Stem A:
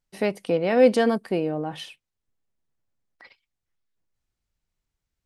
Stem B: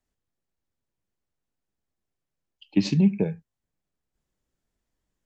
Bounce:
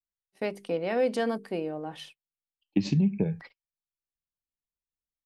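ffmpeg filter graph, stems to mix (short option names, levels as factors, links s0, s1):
-filter_complex "[0:a]highpass=f=130:p=1,bandreject=f=50:t=h:w=6,bandreject=f=100:t=h:w=6,bandreject=f=150:t=h:w=6,bandreject=f=200:t=h:w=6,bandreject=f=250:t=h:w=6,bandreject=f=300:t=h:w=6,bandreject=f=350:t=h:w=6,bandreject=f=400:t=h:w=6,bandreject=f=450:t=h:w=6,adelay=200,volume=1[s0];[1:a]lowshelf=f=210:g=8,volume=0.794,asplit=2[s1][s2];[s2]apad=whole_len=240557[s3];[s0][s3]sidechaingate=range=0.501:threshold=0.00562:ratio=16:detection=peak[s4];[s4][s1]amix=inputs=2:normalize=0,agate=range=0.0501:threshold=0.00447:ratio=16:detection=peak,acompressor=threshold=0.0891:ratio=5"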